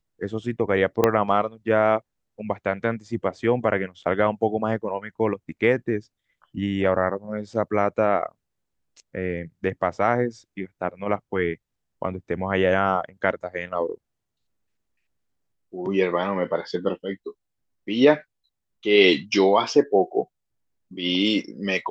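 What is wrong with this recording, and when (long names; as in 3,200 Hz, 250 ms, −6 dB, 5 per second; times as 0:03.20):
0:01.04: click −5 dBFS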